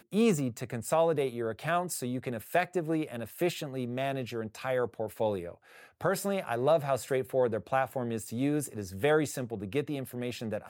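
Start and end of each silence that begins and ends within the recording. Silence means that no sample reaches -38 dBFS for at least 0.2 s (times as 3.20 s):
5.52–6.01 s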